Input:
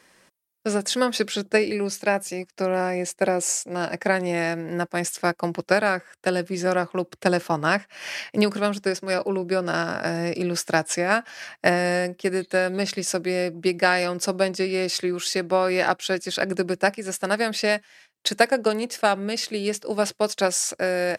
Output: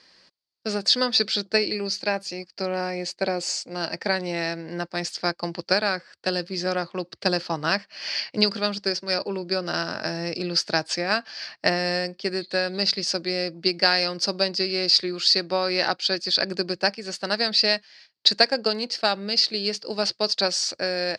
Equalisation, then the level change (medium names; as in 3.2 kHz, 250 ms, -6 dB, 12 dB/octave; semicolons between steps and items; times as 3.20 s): resonant low-pass 4.6 kHz, resonance Q 9; -4.0 dB